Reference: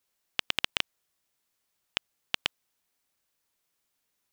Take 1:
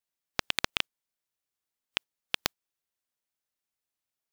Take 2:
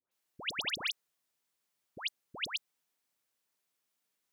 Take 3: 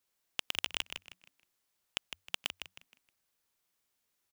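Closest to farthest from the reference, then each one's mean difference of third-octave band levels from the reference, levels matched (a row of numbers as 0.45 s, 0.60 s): 1, 3, 2; 2.5 dB, 4.5 dB, 12.0 dB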